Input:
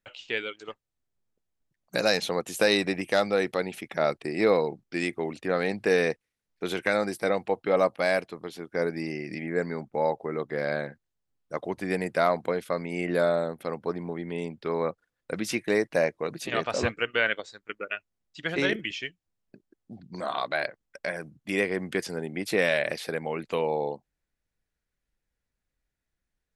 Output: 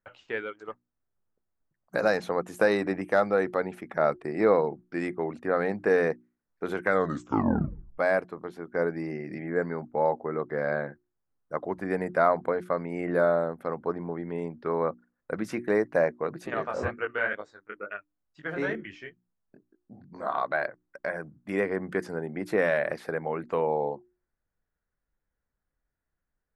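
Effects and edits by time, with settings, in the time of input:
6.87 tape stop 1.11 s
16.54–20.26 chorus 2.2 Hz, delay 18.5 ms, depth 6.1 ms
whole clip: resonant high shelf 2100 Hz -12 dB, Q 1.5; notches 60/120/180/240/300/360 Hz

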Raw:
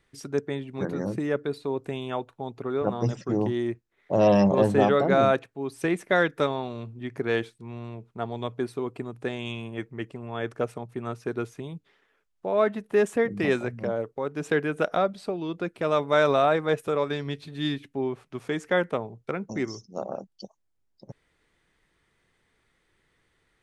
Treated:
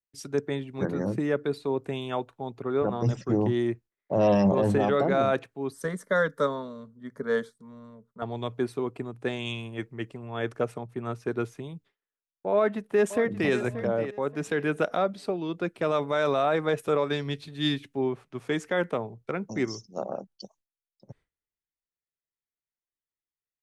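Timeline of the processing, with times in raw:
5.72–8.22 fixed phaser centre 510 Hz, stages 8
12.52–13.52 echo throw 0.58 s, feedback 25%, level -13.5 dB
whole clip: gate with hold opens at -51 dBFS; limiter -17 dBFS; three-band expander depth 40%; gain +1.5 dB

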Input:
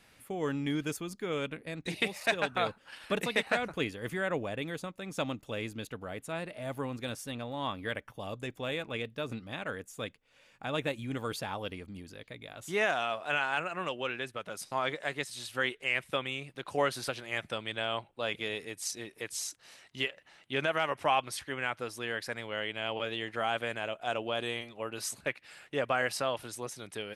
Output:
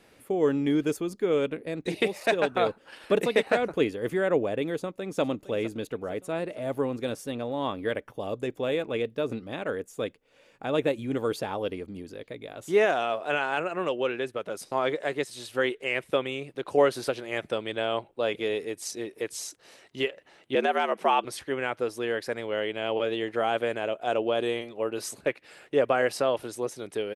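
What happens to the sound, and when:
4.73–5.21 echo throw 0.46 s, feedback 60%, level -15.5 dB
20.55–21.25 frequency shift +81 Hz
whole clip: bell 410 Hz +11.5 dB 1.6 oct

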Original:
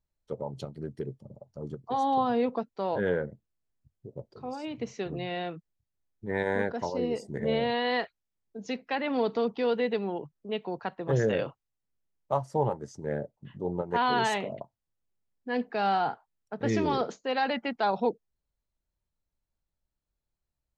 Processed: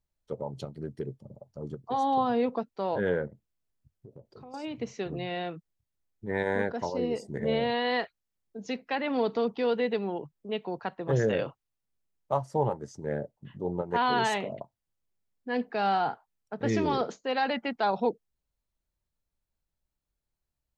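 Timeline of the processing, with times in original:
3.27–4.54 compressor, threshold -44 dBFS

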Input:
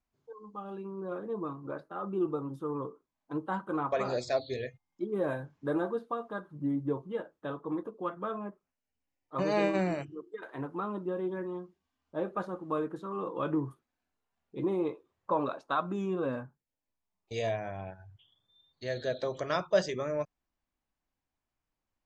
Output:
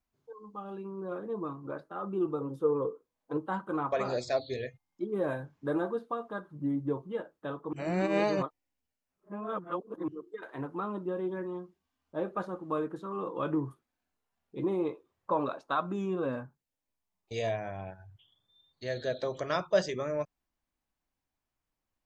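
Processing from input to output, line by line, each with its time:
2.4–3.37 bell 480 Hz +13.5 dB 0.37 oct
7.73–10.08 reverse

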